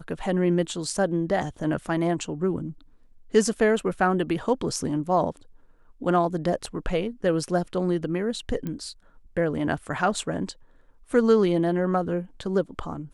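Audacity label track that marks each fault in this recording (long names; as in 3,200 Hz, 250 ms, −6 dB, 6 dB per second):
6.660000	6.660000	drop-out 4.8 ms
8.670000	8.670000	click −20 dBFS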